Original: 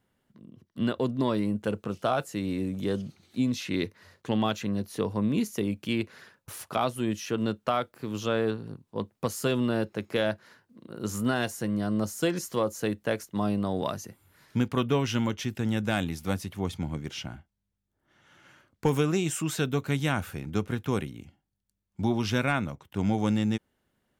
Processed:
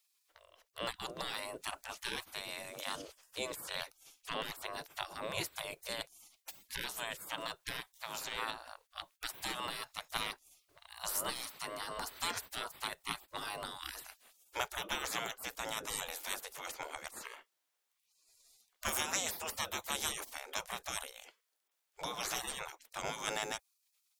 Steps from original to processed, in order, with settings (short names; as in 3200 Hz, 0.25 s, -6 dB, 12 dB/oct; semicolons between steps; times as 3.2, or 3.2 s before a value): spectral gate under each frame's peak -25 dB weak; dynamic EQ 2800 Hz, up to -7 dB, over -56 dBFS, Q 0.71; gain +10 dB